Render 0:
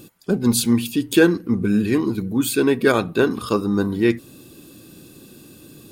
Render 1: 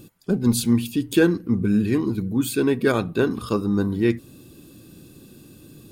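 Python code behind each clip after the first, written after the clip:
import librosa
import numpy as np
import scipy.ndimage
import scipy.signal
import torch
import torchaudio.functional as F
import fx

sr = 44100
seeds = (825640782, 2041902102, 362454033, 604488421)

y = fx.low_shelf(x, sr, hz=200.0, db=8.5)
y = y * 10.0 ** (-5.0 / 20.0)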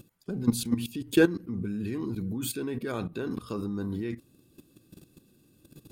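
y = fx.level_steps(x, sr, step_db=15)
y = y * 10.0 ** (-2.0 / 20.0)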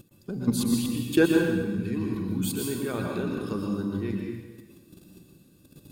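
y = fx.rev_plate(x, sr, seeds[0], rt60_s=1.2, hf_ratio=0.9, predelay_ms=105, drr_db=-0.5)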